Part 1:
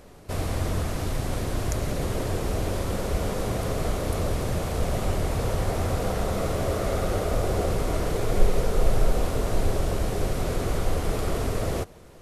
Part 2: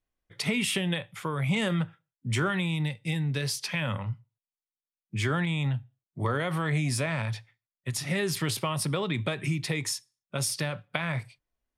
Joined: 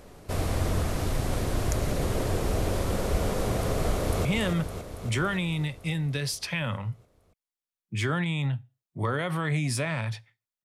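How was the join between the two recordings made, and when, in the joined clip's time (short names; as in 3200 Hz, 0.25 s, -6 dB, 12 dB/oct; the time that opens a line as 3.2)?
part 1
3.9–4.25 echo throw 0.28 s, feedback 70%, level -6.5 dB
4.25 switch to part 2 from 1.46 s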